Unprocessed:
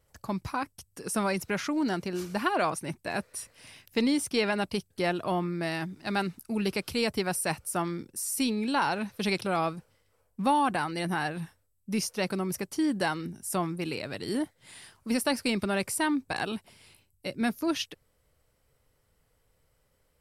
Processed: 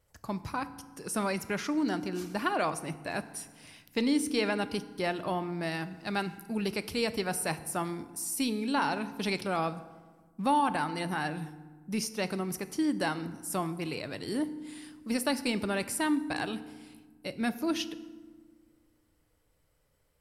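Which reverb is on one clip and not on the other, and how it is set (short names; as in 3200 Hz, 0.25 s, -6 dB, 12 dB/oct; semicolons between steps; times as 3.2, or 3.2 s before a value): FDN reverb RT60 1.4 s, low-frequency decay 1.55×, high-frequency decay 0.6×, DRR 12 dB; gain -2.5 dB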